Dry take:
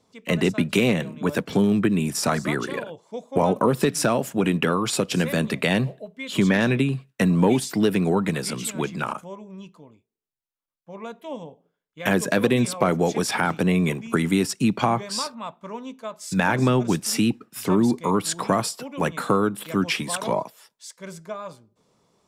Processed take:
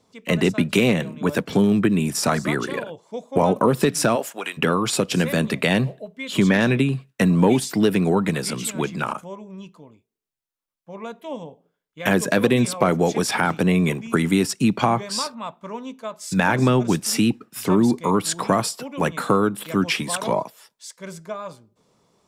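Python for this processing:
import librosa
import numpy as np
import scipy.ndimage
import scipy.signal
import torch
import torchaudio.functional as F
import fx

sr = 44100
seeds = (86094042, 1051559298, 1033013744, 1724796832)

y = fx.highpass(x, sr, hz=fx.line((4.15, 360.0), (4.57, 1300.0)), slope=12, at=(4.15, 4.57), fade=0.02)
y = y * librosa.db_to_amplitude(2.0)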